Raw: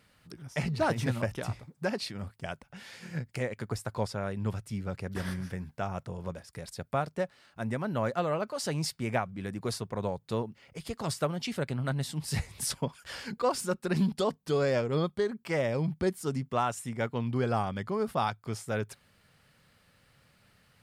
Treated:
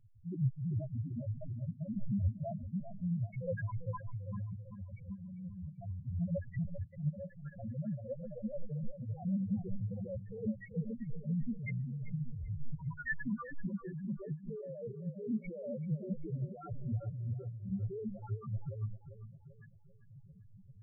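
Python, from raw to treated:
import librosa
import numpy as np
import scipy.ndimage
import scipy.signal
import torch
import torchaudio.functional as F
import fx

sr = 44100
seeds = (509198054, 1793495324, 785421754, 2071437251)

p1 = np.where(x < 0.0, 10.0 ** (-7.0 / 20.0) * x, x)
p2 = fx.high_shelf_res(p1, sr, hz=2900.0, db=-11.0, q=1.5)
p3 = fx.over_compress(p2, sr, threshold_db=-43.0, ratio=-1.0)
p4 = fx.comb_fb(p3, sr, f0_hz=160.0, decay_s=0.96, harmonics='odd', damping=0.0, mix_pct=70, at=(4.54, 5.72))
p5 = fx.rotary(p4, sr, hz=0.75)
p6 = fx.spec_topn(p5, sr, count=1)
p7 = p6 + fx.echo_tape(p6, sr, ms=392, feedback_pct=54, wet_db=-9, lp_hz=1100.0, drive_db=34.0, wow_cents=33, dry=0)
y = F.gain(torch.from_numpy(p7), 15.0).numpy()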